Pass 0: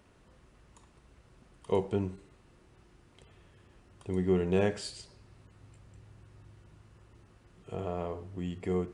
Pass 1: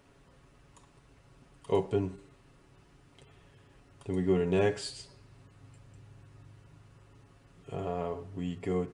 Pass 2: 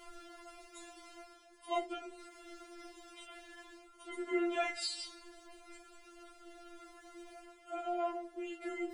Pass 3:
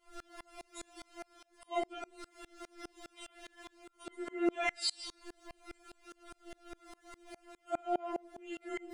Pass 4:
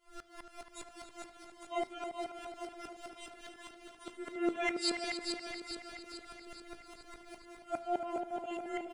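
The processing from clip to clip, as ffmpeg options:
-af "aecho=1:1:7.2:0.56"
-af "areverse,acompressor=mode=upward:threshold=-38dB:ratio=2.5,areverse,flanger=delay=16.5:depth=7.8:speed=0.5,afftfilt=real='re*4*eq(mod(b,16),0)':imag='im*4*eq(mod(b,16),0)':win_size=2048:overlap=0.75,volume=6.5dB"
-af "aeval=exprs='val(0)*pow(10,-31*if(lt(mod(-4.9*n/s,1),2*abs(-4.9)/1000),1-mod(-4.9*n/s,1)/(2*abs(-4.9)/1000),(mod(-4.9*n/s,1)-2*abs(-4.9)/1000)/(1-2*abs(-4.9)/1000))/20)':c=same,volume=9.5dB"
-filter_complex "[0:a]asplit=2[a][b];[b]aecho=0:1:426|852|1278|1704|2130|2556|2982:0.501|0.271|0.146|0.0789|0.0426|0.023|0.0124[c];[a][c]amix=inputs=2:normalize=0,flanger=delay=9.3:depth=1.3:regen=-86:speed=0.53:shape=sinusoidal,asplit=2[d][e];[e]adelay=277,lowpass=f=4.1k:p=1,volume=-7.5dB,asplit=2[f][g];[g]adelay=277,lowpass=f=4.1k:p=1,volume=0.37,asplit=2[h][i];[i]adelay=277,lowpass=f=4.1k:p=1,volume=0.37,asplit=2[j][k];[k]adelay=277,lowpass=f=4.1k:p=1,volume=0.37[l];[f][h][j][l]amix=inputs=4:normalize=0[m];[d][m]amix=inputs=2:normalize=0,volume=4dB"

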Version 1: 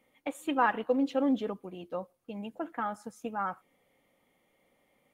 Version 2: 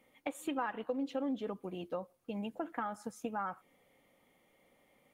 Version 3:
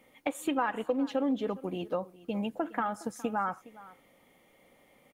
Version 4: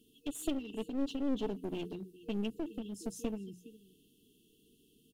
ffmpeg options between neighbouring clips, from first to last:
-af "acompressor=threshold=-36dB:ratio=4,volume=1.5dB"
-af "aecho=1:1:413:0.106,volume=6.5dB"
-af "afftfilt=real='re*(1-between(b*sr/4096,470,2600))':imag='im*(1-between(b*sr/4096,470,2600))':win_size=4096:overlap=0.75,aeval=exprs='clip(val(0),-1,0.01)':c=same,bandreject=f=60:t=h:w=6,bandreject=f=120:t=h:w=6,bandreject=f=180:t=h:w=6"

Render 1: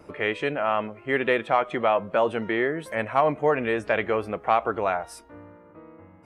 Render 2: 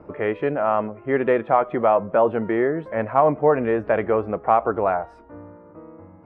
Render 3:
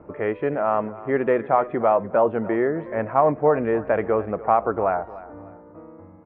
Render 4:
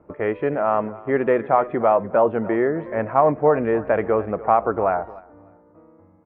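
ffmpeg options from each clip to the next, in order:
-af "lowpass=1.2k,volume=5dB"
-af "lowpass=2.5k,aecho=1:1:296|592|888:0.133|0.044|0.0145,volume=-1dB"
-af "agate=range=-9dB:threshold=-35dB:ratio=16:detection=peak,volume=1.5dB"

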